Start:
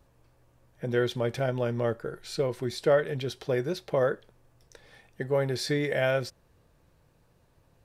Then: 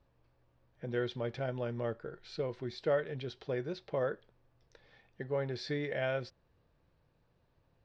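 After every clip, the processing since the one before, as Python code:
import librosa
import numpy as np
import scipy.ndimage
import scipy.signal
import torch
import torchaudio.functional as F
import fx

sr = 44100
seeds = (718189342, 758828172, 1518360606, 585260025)

y = scipy.signal.sosfilt(scipy.signal.butter(4, 4900.0, 'lowpass', fs=sr, output='sos'), x)
y = y * 10.0 ** (-8.0 / 20.0)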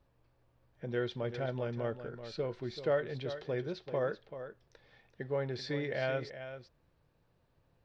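y = x + 10.0 ** (-11.0 / 20.0) * np.pad(x, (int(385 * sr / 1000.0), 0))[:len(x)]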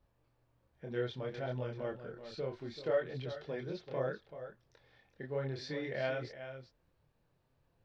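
y = fx.chorus_voices(x, sr, voices=2, hz=0.64, base_ms=27, depth_ms=4.1, mix_pct=45)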